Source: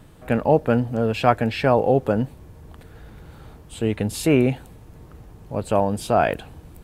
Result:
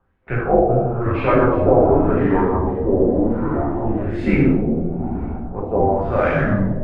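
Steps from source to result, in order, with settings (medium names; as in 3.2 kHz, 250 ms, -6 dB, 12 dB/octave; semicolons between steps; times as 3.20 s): gate with hold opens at -32 dBFS; in parallel at -9 dB: hysteresis with a dead band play -14.5 dBFS; on the sum: frequency shift -110 Hz; plate-style reverb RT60 1.4 s, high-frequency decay 0.95×, DRR -6 dB; LFO low-pass sine 0.99 Hz 660–2100 Hz; ever faster or slower copies 642 ms, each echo -5 st, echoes 2; reverse; upward compressor, threshold -11 dBFS; reverse; trim -8 dB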